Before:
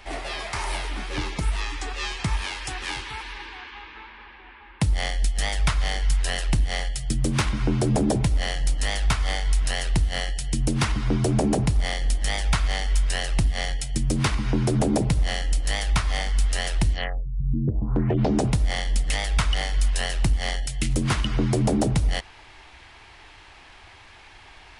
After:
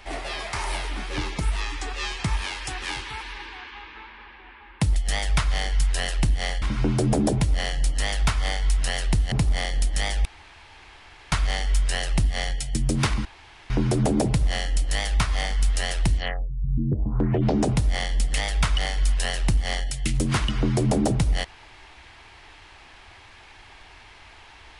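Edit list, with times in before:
4.96–5.26 cut
6.92–7.45 cut
10.15–11.6 cut
12.53 insert room tone 1.07 s
14.46 insert room tone 0.45 s

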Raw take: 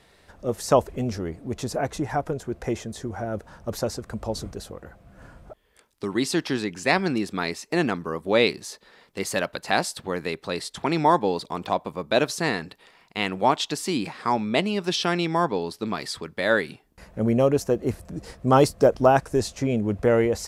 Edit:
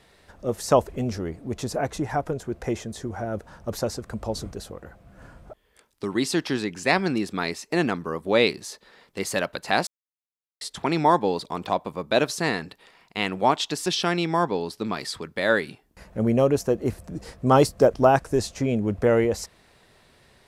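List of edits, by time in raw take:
9.87–10.61 mute
13.86–14.87 cut

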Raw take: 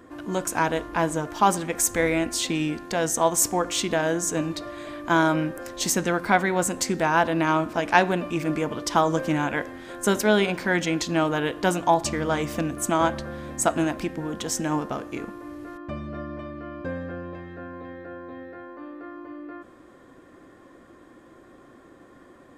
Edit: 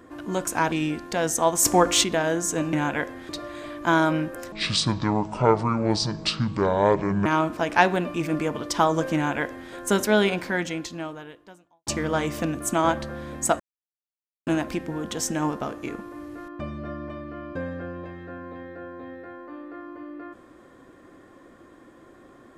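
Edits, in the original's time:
0.72–2.51 cut
3.44–3.83 gain +6.5 dB
5.75–7.42 speed 61%
9.31–9.87 copy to 4.52
10.48–12.03 fade out quadratic
13.76 insert silence 0.87 s

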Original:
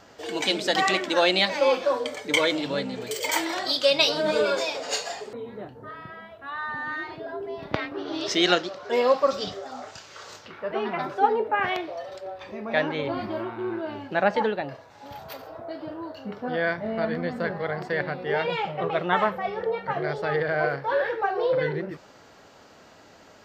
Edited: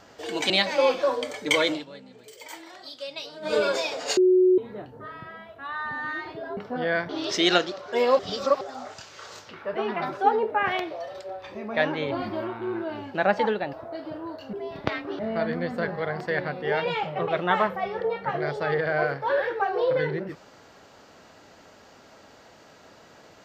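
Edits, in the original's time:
0.5–1.33 cut
2.55–4.38 dip -16 dB, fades 0.13 s
5–5.41 bleep 368 Hz -14.5 dBFS
7.4–8.06 swap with 16.29–16.81
9.16–9.58 reverse
14.7–15.49 cut

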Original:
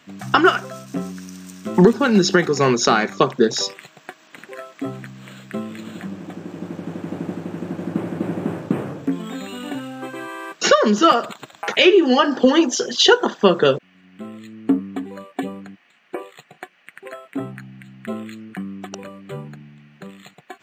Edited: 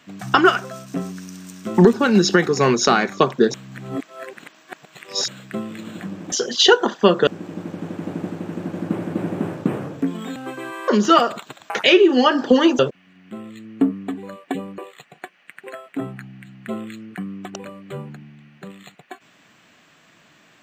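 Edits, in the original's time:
3.54–5.28 reverse
9.41–9.92 cut
10.44–10.81 cut
12.72–13.67 move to 6.32
15.66–16.17 cut

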